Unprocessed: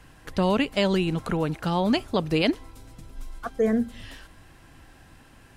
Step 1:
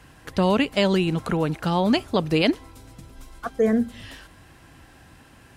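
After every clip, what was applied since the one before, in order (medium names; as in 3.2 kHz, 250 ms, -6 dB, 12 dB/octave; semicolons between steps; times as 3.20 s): high-pass 47 Hz; trim +2.5 dB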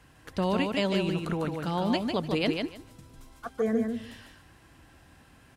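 feedback delay 150 ms, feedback 18%, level -4.5 dB; trim -7.5 dB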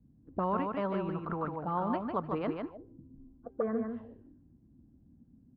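touch-sensitive low-pass 210–1200 Hz up, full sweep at -27 dBFS; trim -7 dB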